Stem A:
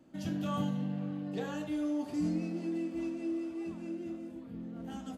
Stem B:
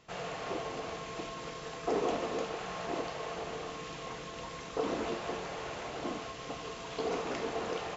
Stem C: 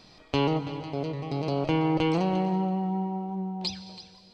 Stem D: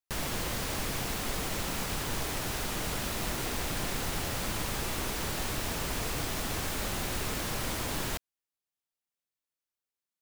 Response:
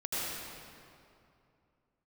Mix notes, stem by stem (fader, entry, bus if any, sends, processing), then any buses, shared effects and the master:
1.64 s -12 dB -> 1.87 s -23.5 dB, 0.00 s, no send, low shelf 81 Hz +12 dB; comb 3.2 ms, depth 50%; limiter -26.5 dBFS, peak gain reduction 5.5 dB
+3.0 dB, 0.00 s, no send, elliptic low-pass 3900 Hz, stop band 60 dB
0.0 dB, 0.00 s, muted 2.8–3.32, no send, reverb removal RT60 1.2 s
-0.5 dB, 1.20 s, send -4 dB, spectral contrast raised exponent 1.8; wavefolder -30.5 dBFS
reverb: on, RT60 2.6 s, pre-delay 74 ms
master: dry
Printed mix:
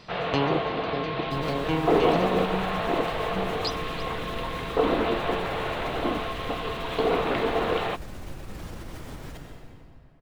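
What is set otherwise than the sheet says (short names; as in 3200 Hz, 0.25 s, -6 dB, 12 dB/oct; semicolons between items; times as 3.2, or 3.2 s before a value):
stem B +3.0 dB -> +11.0 dB; stem D -0.5 dB -> -7.5 dB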